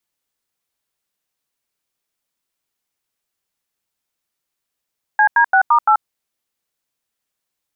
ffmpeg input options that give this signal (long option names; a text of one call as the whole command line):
ffmpeg -f lavfi -i "aevalsrc='0.266*clip(min(mod(t,0.171),0.084-mod(t,0.171))/0.002,0,1)*(eq(floor(t/0.171),0)*(sin(2*PI*852*mod(t,0.171))+sin(2*PI*1633*mod(t,0.171)))+eq(floor(t/0.171),1)*(sin(2*PI*941*mod(t,0.171))+sin(2*PI*1633*mod(t,0.171)))+eq(floor(t/0.171),2)*(sin(2*PI*770*mod(t,0.171))+sin(2*PI*1477*mod(t,0.171)))+eq(floor(t/0.171),3)*(sin(2*PI*941*mod(t,0.171))+sin(2*PI*1209*mod(t,0.171)))+eq(floor(t/0.171),4)*(sin(2*PI*852*mod(t,0.171))+sin(2*PI*1336*mod(t,0.171))))':duration=0.855:sample_rate=44100" out.wav